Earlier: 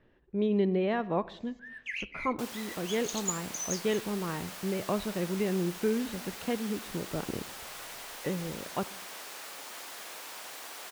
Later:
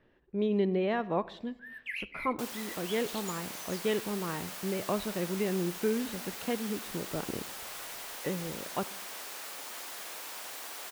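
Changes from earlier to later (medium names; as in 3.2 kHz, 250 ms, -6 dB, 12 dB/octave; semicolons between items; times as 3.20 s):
speech: add bass shelf 170 Hz -4.5 dB; first sound: remove resonant low-pass 6.4 kHz, resonance Q 9.7; master: add treble shelf 9.8 kHz +4.5 dB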